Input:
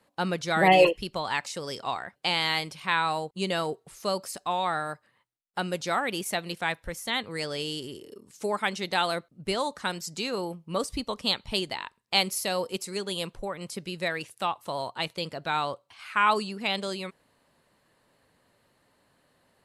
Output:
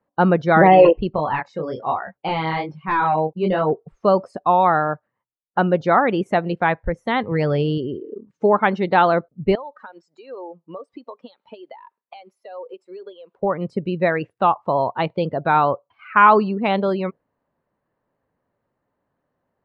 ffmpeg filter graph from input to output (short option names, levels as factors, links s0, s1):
-filter_complex "[0:a]asettb=1/sr,asplit=3[s0][s1][s2];[s0]atrim=end=1.164[s3];[s1]atrim=start=1.16:end=3.71,asetpts=PTS-STARTPTS,afade=t=in:d=0.004:c=qsin,afade=t=out:st=2.546:d=0.004:c=qsin,flanger=delay=19.5:depth=6:speed=1.2,volume=18.8,asoftclip=hard,volume=0.0531[s4];[s2]atrim=start=3.706[s5];[s3][s4]acrossfade=d=0.004:c1=hsin:c2=qsin[s6];[s6][s5]acrossfade=d=0.004:c1=qsin:c2=hsin,asettb=1/sr,asplit=3[s7][s8][s9];[s7]atrim=end=7.314[s10];[s8]atrim=start=7.31:end=7.78,asetpts=PTS-STARTPTS,afade=t=in:d=0.004:c=qsin,afade=t=out:st=0.466:d=0.004:c=qsin,highpass=88,equalizer=f=130:t=o:w=0.59:g=11,acrusher=bits=8:dc=4:mix=0:aa=0.000001[s11];[s9]atrim=start=7.776[s12];[s10][s11]acrossfade=d=0.004:c1=hsin:c2=qsin[s13];[s13][s12]acrossfade=d=0.004:c1=qsin:c2=hsin,asettb=1/sr,asplit=3[s14][s15][s16];[s14]atrim=end=9.554[s17];[s15]atrim=start=9.55:end=13.43,asetpts=PTS-STARTPTS,afade=t=in:d=0.004:c=qsin,afade=t=out:st=3.876:d=0.004:c=qsin,highpass=420,highshelf=f=5500:g=4,acompressor=threshold=0.00708:ratio=5:attack=3.2:release=140:knee=1:detection=peak[s18];[s16]atrim=start=13.426[s19];[s17][s18]acrossfade=d=0.004:c1=hsin:c2=qsin[s20];[s20][s19]acrossfade=d=0.004:c1=qsin:c2=hsin,afftdn=nr=20:nf=-41,lowpass=1300,alimiter=level_in=5.31:limit=0.891:release=50:level=0:latency=1,volume=0.891"